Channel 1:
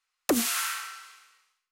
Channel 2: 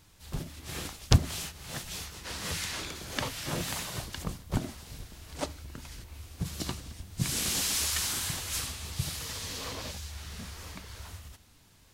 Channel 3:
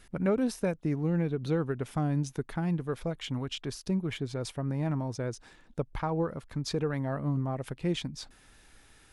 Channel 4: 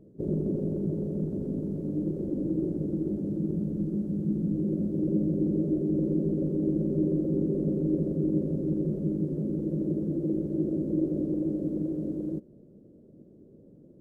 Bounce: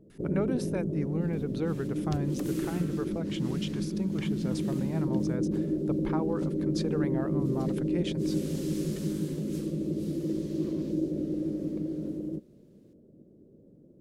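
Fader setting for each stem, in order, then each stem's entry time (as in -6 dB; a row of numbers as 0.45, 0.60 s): -19.0, -18.0, -3.0, -2.5 dB; 2.10, 1.00, 0.10, 0.00 s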